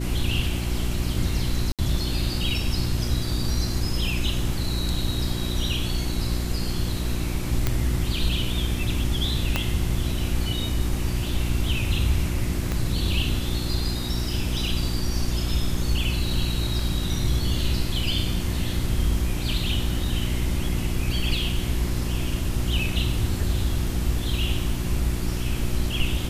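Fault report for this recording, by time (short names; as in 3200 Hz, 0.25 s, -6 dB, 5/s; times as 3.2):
hum 60 Hz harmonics 6 -28 dBFS
1.72–1.79 gap 67 ms
4.94 gap 2.1 ms
7.67 pop -7 dBFS
9.56 pop -7 dBFS
12.72 pop -14 dBFS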